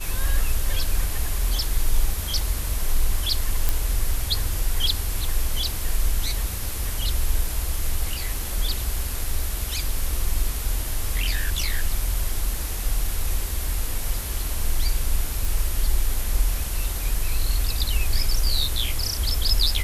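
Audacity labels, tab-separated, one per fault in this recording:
3.690000	3.690000	pop
15.450000	15.450000	pop

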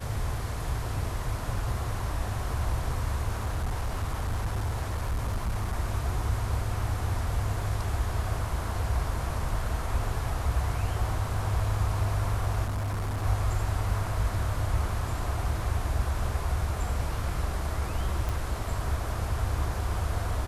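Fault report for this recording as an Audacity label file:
3.340000	5.760000	clipped -25 dBFS
12.640000	13.250000	clipped -27 dBFS
18.290000	18.290000	pop

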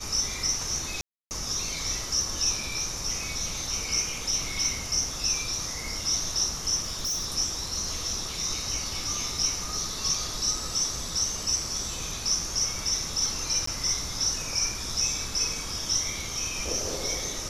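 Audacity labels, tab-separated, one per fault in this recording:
1.010000	1.310000	gap 0.299 s
6.830000	7.260000	clipped -26 dBFS
13.660000	13.670000	gap 14 ms

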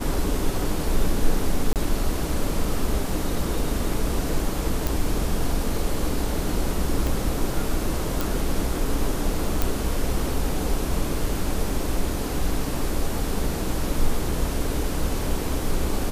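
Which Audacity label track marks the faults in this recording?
1.730000	1.760000	gap 28 ms
4.870000	4.870000	pop
7.070000	7.070000	pop
8.210000	8.210000	pop
9.620000	9.620000	pop

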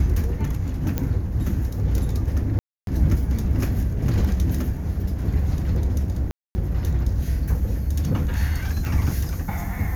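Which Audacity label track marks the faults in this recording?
0.980000	0.980000	pop -10 dBFS
2.590000	2.870000	gap 0.282 s
6.310000	6.550000	gap 0.24 s
8.850000	8.850000	pop

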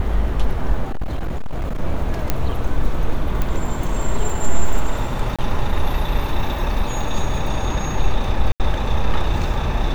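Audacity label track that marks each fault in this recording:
0.900000	1.820000	clipped -18.5 dBFS
2.300000	2.300000	pop -4 dBFS
3.420000	3.420000	pop -9 dBFS
5.360000	5.390000	gap 26 ms
8.520000	8.600000	gap 78 ms

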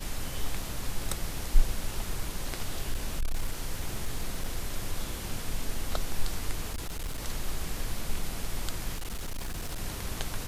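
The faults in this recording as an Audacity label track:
0.620000	0.620000	gap 2.4 ms
2.930000	4.580000	clipped -24 dBFS
6.720000	7.260000	clipped -30 dBFS
8.940000	9.790000	clipped -30.5 dBFS

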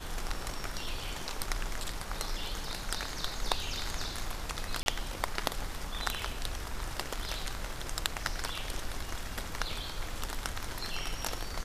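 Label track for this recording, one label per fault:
4.830000	4.860000	gap 31 ms

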